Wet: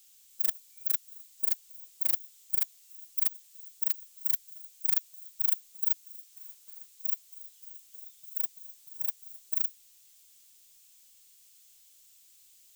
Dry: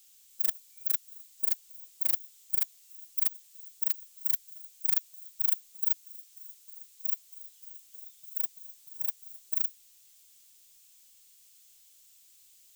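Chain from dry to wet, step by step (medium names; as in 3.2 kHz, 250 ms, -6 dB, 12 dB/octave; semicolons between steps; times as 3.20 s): 6.32–6.91 s: block-companded coder 5-bit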